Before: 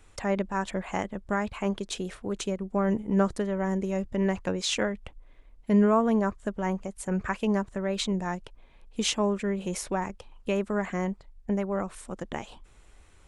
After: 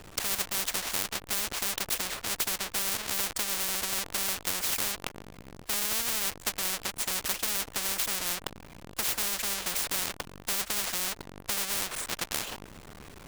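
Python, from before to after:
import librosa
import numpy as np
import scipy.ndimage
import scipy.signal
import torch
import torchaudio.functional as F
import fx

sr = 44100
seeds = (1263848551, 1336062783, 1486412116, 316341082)

y = fx.halfwave_hold(x, sr)
y = fx.spectral_comp(y, sr, ratio=10.0)
y = y * librosa.db_to_amplitude(1.5)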